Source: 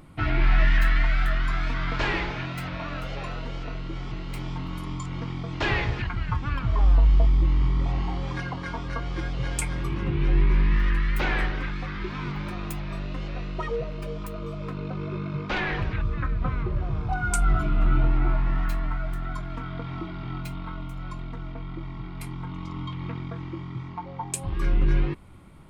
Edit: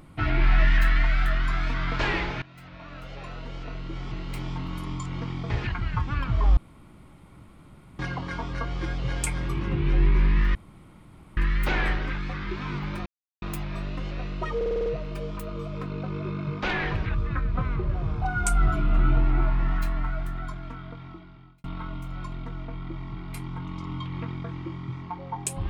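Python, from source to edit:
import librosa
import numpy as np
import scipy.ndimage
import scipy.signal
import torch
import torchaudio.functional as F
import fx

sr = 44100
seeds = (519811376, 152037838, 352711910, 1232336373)

y = fx.edit(x, sr, fx.fade_in_from(start_s=2.42, length_s=1.78, floor_db=-19.5),
    fx.cut(start_s=5.5, length_s=0.35),
    fx.room_tone_fill(start_s=6.92, length_s=1.42),
    fx.insert_room_tone(at_s=10.9, length_s=0.82),
    fx.insert_silence(at_s=12.59, length_s=0.36),
    fx.stutter(start_s=13.73, slice_s=0.05, count=7),
    fx.fade_out_span(start_s=18.99, length_s=1.52), tone=tone)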